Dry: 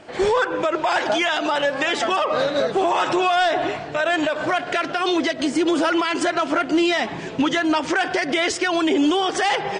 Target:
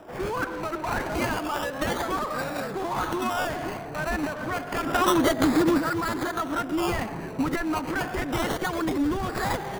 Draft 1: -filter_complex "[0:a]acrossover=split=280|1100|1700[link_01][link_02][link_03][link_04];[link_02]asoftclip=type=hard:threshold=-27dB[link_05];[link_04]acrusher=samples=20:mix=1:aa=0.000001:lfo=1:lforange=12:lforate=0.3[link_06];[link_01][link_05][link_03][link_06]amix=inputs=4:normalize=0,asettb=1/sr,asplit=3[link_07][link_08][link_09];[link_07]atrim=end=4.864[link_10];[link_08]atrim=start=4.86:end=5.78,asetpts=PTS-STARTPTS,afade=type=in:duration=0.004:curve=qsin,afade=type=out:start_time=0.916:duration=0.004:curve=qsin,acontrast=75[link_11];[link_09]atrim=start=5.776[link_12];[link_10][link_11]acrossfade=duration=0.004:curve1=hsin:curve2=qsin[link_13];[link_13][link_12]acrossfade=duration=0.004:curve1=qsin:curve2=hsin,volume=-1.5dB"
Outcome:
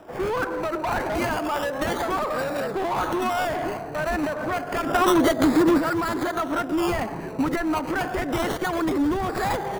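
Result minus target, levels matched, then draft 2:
hard clipping: distortion −4 dB
-filter_complex "[0:a]acrossover=split=280|1100|1700[link_01][link_02][link_03][link_04];[link_02]asoftclip=type=hard:threshold=-37.5dB[link_05];[link_04]acrusher=samples=20:mix=1:aa=0.000001:lfo=1:lforange=12:lforate=0.3[link_06];[link_01][link_05][link_03][link_06]amix=inputs=4:normalize=0,asettb=1/sr,asplit=3[link_07][link_08][link_09];[link_07]atrim=end=4.864[link_10];[link_08]atrim=start=4.86:end=5.78,asetpts=PTS-STARTPTS,afade=type=in:duration=0.004:curve=qsin,afade=type=out:start_time=0.916:duration=0.004:curve=qsin,acontrast=75[link_11];[link_09]atrim=start=5.776[link_12];[link_10][link_11]acrossfade=duration=0.004:curve1=hsin:curve2=qsin[link_13];[link_13][link_12]acrossfade=duration=0.004:curve1=qsin:curve2=hsin,volume=-1.5dB"

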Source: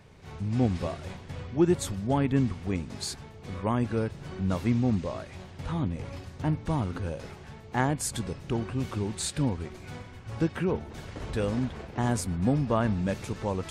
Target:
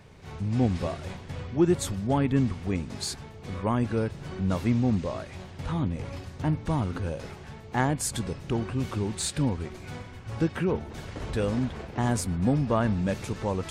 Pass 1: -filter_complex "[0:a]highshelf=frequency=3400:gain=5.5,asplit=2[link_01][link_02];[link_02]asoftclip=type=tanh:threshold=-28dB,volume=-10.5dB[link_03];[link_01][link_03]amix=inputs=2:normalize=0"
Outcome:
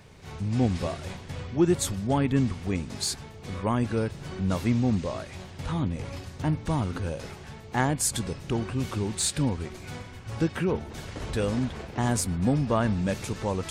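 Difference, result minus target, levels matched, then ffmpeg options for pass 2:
8,000 Hz band +4.0 dB
-filter_complex "[0:a]asplit=2[link_01][link_02];[link_02]asoftclip=type=tanh:threshold=-28dB,volume=-10.5dB[link_03];[link_01][link_03]amix=inputs=2:normalize=0"

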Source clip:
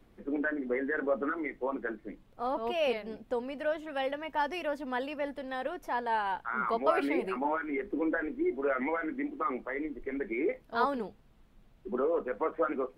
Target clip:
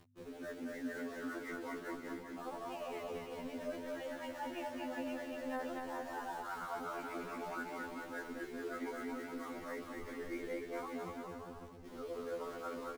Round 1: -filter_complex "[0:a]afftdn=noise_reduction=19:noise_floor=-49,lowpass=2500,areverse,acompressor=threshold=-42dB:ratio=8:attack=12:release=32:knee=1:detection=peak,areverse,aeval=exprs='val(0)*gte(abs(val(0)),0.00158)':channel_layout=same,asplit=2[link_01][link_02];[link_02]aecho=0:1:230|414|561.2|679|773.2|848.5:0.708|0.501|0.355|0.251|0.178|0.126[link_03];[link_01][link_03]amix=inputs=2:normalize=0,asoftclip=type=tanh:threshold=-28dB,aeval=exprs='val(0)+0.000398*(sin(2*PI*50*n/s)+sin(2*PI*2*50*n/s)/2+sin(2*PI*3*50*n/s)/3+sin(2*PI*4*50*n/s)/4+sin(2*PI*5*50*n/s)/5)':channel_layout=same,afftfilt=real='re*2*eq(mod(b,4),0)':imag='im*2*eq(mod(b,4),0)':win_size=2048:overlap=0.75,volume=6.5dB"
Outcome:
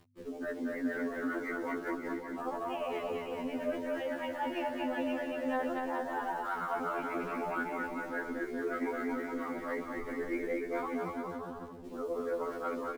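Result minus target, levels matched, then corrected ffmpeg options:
downward compressor: peak gain reduction −8 dB
-filter_complex "[0:a]afftdn=noise_reduction=19:noise_floor=-49,lowpass=2500,areverse,acompressor=threshold=-51dB:ratio=8:attack=12:release=32:knee=1:detection=peak,areverse,aeval=exprs='val(0)*gte(abs(val(0)),0.00158)':channel_layout=same,asplit=2[link_01][link_02];[link_02]aecho=0:1:230|414|561.2|679|773.2|848.5:0.708|0.501|0.355|0.251|0.178|0.126[link_03];[link_01][link_03]amix=inputs=2:normalize=0,asoftclip=type=tanh:threshold=-28dB,aeval=exprs='val(0)+0.000398*(sin(2*PI*50*n/s)+sin(2*PI*2*50*n/s)/2+sin(2*PI*3*50*n/s)/3+sin(2*PI*4*50*n/s)/4+sin(2*PI*5*50*n/s)/5)':channel_layout=same,afftfilt=real='re*2*eq(mod(b,4),0)':imag='im*2*eq(mod(b,4),0)':win_size=2048:overlap=0.75,volume=6.5dB"

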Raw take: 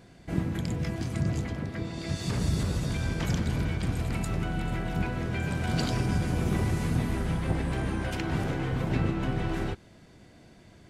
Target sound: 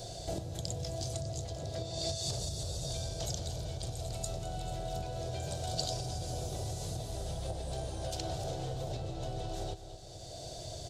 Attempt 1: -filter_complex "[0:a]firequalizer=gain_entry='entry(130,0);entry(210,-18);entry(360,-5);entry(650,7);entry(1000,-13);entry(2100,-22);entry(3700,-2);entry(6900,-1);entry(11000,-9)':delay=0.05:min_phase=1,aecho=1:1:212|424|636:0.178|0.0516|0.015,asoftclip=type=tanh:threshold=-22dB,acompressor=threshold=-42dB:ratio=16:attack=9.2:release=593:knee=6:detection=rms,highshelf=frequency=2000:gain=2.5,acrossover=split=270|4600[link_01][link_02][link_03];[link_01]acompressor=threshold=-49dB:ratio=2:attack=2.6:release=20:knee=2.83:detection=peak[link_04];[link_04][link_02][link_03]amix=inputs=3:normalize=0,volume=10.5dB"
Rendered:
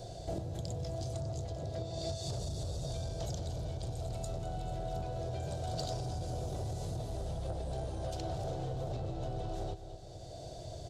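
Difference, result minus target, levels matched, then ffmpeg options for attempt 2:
soft clipping: distortion +14 dB; 4,000 Hz band −6.0 dB
-filter_complex "[0:a]firequalizer=gain_entry='entry(130,0);entry(210,-18);entry(360,-5);entry(650,7);entry(1000,-13);entry(2100,-22);entry(3700,-2);entry(6900,-1);entry(11000,-9)':delay=0.05:min_phase=1,aecho=1:1:212|424|636:0.178|0.0516|0.015,asoftclip=type=tanh:threshold=-13.5dB,acompressor=threshold=-42dB:ratio=16:attack=9.2:release=593:knee=6:detection=rms,highshelf=frequency=2000:gain=12.5,acrossover=split=270|4600[link_01][link_02][link_03];[link_01]acompressor=threshold=-49dB:ratio=2:attack=2.6:release=20:knee=2.83:detection=peak[link_04];[link_04][link_02][link_03]amix=inputs=3:normalize=0,volume=10.5dB"

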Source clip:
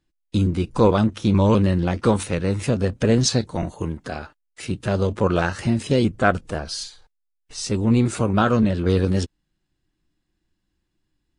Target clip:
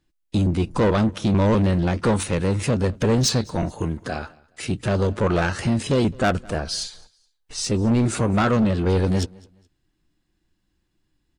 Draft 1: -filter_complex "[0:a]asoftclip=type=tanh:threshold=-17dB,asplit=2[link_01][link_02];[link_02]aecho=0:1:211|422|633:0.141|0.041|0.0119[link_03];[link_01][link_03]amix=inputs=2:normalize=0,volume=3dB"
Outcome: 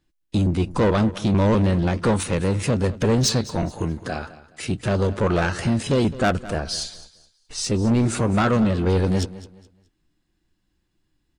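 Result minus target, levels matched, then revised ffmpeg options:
echo-to-direct +8 dB
-filter_complex "[0:a]asoftclip=type=tanh:threshold=-17dB,asplit=2[link_01][link_02];[link_02]aecho=0:1:211|422:0.0562|0.0163[link_03];[link_01][link_03]amix=inputs=2:normalize=0,volume=3dB"

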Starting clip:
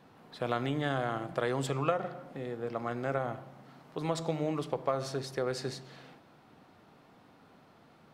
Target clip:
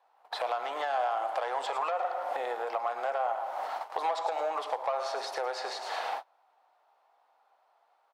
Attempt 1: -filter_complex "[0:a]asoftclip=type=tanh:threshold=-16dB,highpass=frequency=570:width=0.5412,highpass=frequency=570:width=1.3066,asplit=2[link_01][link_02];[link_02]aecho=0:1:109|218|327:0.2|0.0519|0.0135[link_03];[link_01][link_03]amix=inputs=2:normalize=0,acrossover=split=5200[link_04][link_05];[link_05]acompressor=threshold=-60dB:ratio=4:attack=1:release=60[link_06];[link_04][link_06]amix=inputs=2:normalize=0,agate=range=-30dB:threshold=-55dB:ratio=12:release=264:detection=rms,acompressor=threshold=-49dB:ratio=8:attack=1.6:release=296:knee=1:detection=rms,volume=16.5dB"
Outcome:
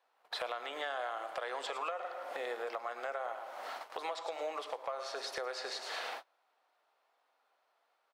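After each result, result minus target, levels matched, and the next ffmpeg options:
soft clipping: distortion −15 dB; 1,000 Hz band −3.0 dB
-filter_complex "[0:a]asoftclip=type=tanh:threshold=-27.5dB,highpass=frequency=570:width=0.5412,highpass=frequency=570:width=1.3066,asplit=2[link_01][link_02];[link_02]aecho=0:1:109|218|327:0.2|0.0519|0.0135[link_03];[link_01][link_03]amix=inputs=2:normalize=0,acrossover=split=5200[link_04][link_05];[link_05]acompressor=threshold=-60dB:ratio=4:attack=1:release=60[link_06];[link_04][link_06]amix=inputs=2:normalize=0,agate=range=-30dB:threshold=-55dB:ratio=12:release=264:detection=rms,acompressor=threshold=-49dB:ratio=8:attack=1.6:release=296:knee=1:detection=rms,volume=16.5dB"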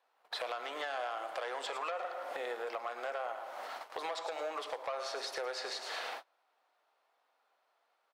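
1,000 Hz band −3.0 dB
-filter_complex "[0:a]asoftclip=type=tanh:threshold=-27.5dB,highpass=frequency=570:width=0.5412,highpass=frequency=570:width=1.3066,asplit=2[link_01][link_02];[link_02]aecho=0:1:109|218|327:0.2|0.0519|0.0135[link_03];[link_01][link_03]amix=inputs=2:normalize=0,acrossover=split=5200[link_04][link_05];[link_05]acompressor=threshold=-60dB:ratio=4:attack=1:release=60[link_06];[link_04][link_06]amix=inputs=2:normalize=0,agate=range=-30dB:threshold=-55dB:ratio=12:release=264:detection=rms,acompressor=threshold=-49dB:ratio=8:attack=1.6:release=296:knee=1:detection=rms,equalizer=frequency=820:width=1.5:gain=12,volume=16.5dB"

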